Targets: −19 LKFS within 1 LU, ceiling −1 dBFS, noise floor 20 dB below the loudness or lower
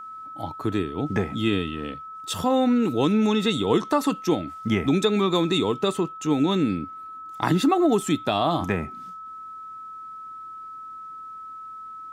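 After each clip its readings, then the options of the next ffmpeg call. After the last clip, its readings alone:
interfering tone 1,300 Hz; level of the tone −36 dBFS; integrated loudness −23.5 LKFS; sample peak −5.5 dBFS; target loudness −19.0 LKFS
→ -af "bandreject=frequency=1300:width=30"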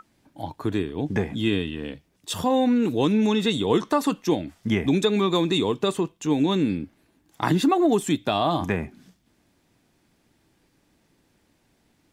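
interfering tone none found; integrated loudness −23.5 LKFS; sample peak −6.0 dBFS; target loudness −19.0 LKFS
→ -af "volume=4.5dB"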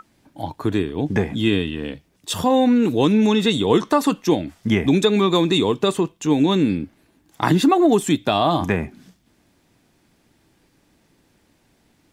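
integrated loudness −19.0 LKFS; sample peak −1.5 dBFS; background noise floor −62 dBFS

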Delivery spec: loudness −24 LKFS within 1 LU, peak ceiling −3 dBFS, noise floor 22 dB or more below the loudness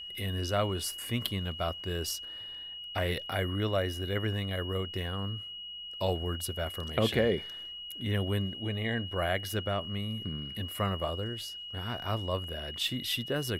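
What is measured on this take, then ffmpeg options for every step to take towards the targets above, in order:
interfering tone 2,900 Hz; level of the tone −40 dBFS; integrated loudness −33.0 LKFS; sample peak −13.5 dBFS; target loudness −24.0 LKFS
→ -af "bandreject=frequency=2900:width=30"
-af "volume=9dB"

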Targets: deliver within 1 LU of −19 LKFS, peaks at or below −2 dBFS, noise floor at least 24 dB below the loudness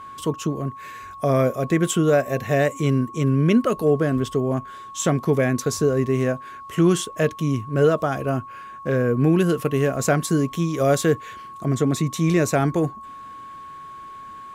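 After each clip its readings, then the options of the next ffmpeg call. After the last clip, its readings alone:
interfering tone 1,100 Hz; level of the tone −36 dBFS; integrated loudness −21.5 LKFS; sample peak −7.0 dBFS; target loudness −19.0 LKFS
→ -af "bandreject=frequency=1100:width=30"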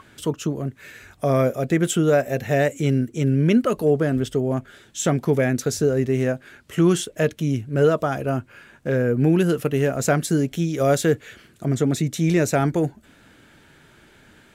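interfering tone none found; integrated loudness −21.5 LKFS; sample peak −7.5 dBFS; target loudness −19.0 LKFS
→ -af "volume=2.5dB"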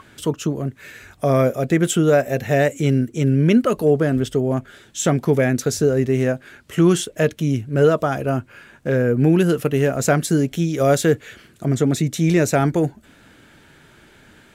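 integrated loudness −19.0 LKFS; sample peak −5.0 dBFS; background noise floor −51 dBFS

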